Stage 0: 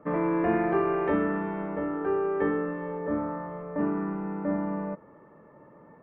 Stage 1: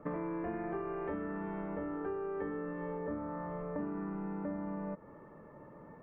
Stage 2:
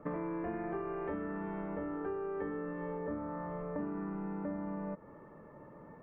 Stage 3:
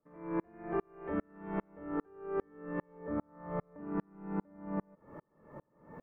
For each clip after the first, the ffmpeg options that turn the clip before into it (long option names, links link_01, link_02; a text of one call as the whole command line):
ffmpeg -i in.wav -filter_complex "[0:a]acrossover=split=2600[link_01][link_02];[link_02]acompressor=threshold=-58dB:ratio=4:attack=1:release=60[link_03];[link_01][link_03]amix=inputs=2:normalize=0,lowshelf=frequency=70:gain=12,acompressor=threshold=-35dB:ratio=6,volume=-1dB" out.wav
ffmpeg -i in.wav -af anull out.wav
ffmpeg -i in.wav -af "aeval=exprs='val(0)*pow(10,-40*if(lt(mod(-2.5*n/s,1),2*abs(-2.5)/1000),1-mod(-2.5*n/s,1)/(2*abs(-2.5)/1000),(mod(-2.5*n/s,1)-2*abs(-2.5)/1000)/(1-2*abs(-2.5)/1000))/20)':channel_layout=same,volume=9dB" out.wav